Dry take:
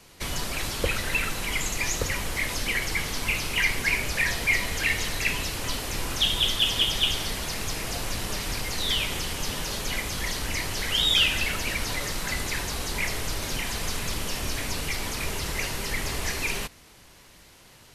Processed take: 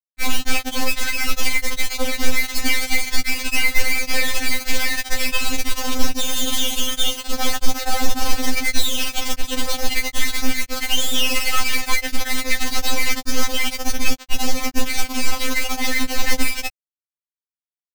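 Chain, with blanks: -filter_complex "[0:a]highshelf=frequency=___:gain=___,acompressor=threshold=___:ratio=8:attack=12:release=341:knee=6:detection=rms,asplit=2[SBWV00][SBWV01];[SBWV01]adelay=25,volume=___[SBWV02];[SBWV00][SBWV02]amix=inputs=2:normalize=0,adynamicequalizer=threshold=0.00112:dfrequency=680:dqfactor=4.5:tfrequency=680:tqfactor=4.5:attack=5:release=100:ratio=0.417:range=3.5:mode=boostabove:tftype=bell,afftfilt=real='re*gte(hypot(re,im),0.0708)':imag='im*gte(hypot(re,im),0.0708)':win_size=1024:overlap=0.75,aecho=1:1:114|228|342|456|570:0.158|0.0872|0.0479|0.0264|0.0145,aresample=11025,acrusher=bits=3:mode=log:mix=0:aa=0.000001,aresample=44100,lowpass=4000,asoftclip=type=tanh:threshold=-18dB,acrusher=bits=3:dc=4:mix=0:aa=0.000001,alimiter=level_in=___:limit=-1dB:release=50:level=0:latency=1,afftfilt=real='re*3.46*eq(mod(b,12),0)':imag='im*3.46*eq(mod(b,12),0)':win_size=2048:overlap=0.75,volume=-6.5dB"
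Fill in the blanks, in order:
2700, 5.5, -25dB, -7.5dB, 26dB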